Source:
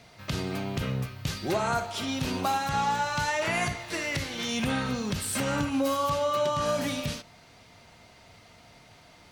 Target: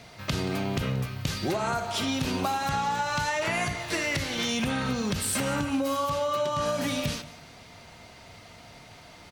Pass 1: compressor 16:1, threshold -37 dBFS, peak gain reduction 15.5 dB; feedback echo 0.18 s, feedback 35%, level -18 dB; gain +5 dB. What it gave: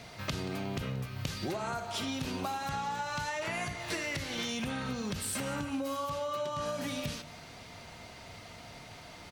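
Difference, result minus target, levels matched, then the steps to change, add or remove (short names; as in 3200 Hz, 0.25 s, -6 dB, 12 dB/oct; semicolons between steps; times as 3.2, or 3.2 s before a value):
compressor: peak gain reduction +7.5 dB
change: compressor 16:1, threshold -29 dBFS, peak gain reduction 8 dB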